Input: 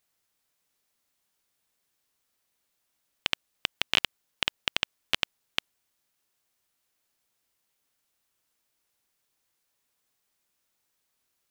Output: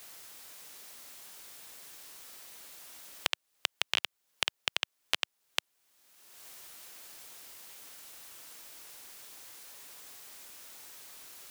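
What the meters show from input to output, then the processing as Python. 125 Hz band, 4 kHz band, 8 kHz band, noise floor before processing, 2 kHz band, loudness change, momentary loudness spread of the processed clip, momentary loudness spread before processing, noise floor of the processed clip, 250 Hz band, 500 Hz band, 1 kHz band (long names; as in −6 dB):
−9.5 dB, −3.5 dB, +4.5 dB, −78 dBFS, −3.5 dB, −8.5 dB, 14 LU, 8 LU, −80 dBFS, −6.5 dB, −2.5 dB, −2.0 dB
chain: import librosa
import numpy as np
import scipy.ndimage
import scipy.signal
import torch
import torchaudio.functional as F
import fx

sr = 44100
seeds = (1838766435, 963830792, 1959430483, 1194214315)

y = fx.bass_treble(x, sr, bass_db=-7, treble_db=1)
y = fx.band_squash(y, sr, depth_pct=100)
y = y * librosa.db_to_amplitude(-3.5)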